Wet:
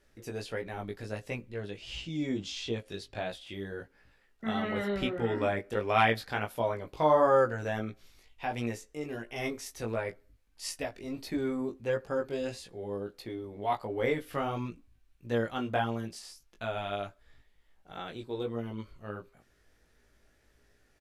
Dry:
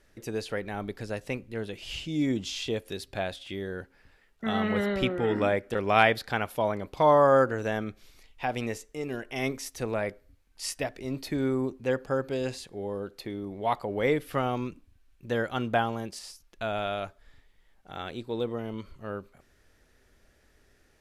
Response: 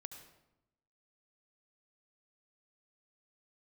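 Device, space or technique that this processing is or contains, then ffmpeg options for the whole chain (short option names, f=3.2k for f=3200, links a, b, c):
double-tracked vocal: -filter_complex "[0:a]asplit=2[a][b];[b]adelay=17,volume=-13dB[c];[a][c]amix=inputs=2:normalize=0,flanger=delay=17:depth=2.9:speed=1.5,asettb=1/sr,asplit=3[d][e][f];[d]atrim=end=1.514[g];[e]atrim=start=1.51:end=3.3,asetpts=PTS-STARTPTS,afade=t=in:d=0.004:c=qsin,afade=t=out:st=1.786:d=0.004:c=qsin,lowpass=7.9k[h];[f]atrim=start=3.296[i];[g][h]acrossfade=d=0.004:c1=hsin:c2=qsin[j];[j][i]acrossfade=d=0.004:c1=qsin:c2=hsin,volume=-1dB"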